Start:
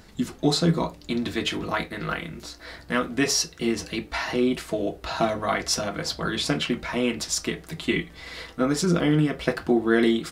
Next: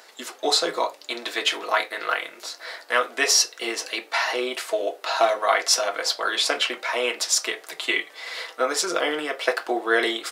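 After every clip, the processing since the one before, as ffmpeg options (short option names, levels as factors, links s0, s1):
-af "highpass=f=490:w=0.5412,highpass=f=490:w=1.3066,volume=1.88"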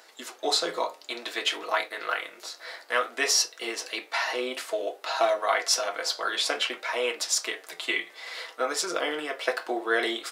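-af "flanger=delay=6.1:depth=5.9:regen=79:speed=0.57:shape=sinusoidal"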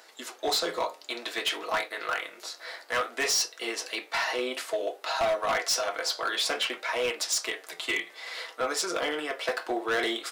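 -af "asoftclip=type=hard:threshold=0.0794"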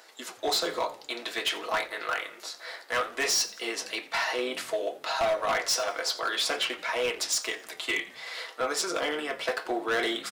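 -filter_complex "[0:a]asplit=4[s0][s1][s2][s3];[s1]adelay=87,afreqshift=-70,volume=0.112[s4];[s2]adelay=174,afreqshift=-140,volume=0.0495[s5];[s3]adelay=261,afreqshift=-210,volume=0.0216[s6];[s0][s4][s5][s6]amix=inputs=4:normalize=0"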